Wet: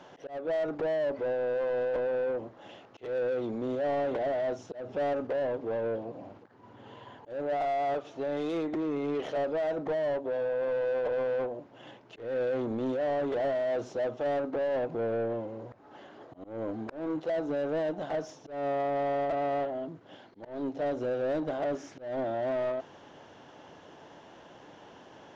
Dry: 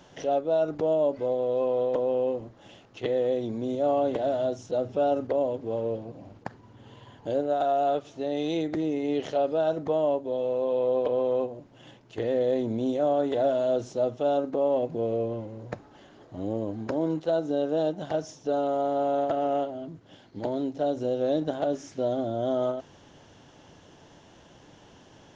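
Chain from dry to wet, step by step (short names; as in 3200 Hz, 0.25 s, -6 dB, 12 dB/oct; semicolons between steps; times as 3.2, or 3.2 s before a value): overdrive pedal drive 22 dB, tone 1100 Hz, clips at -15 dBFS; auto swell 0.21 s; gain -7.5 dB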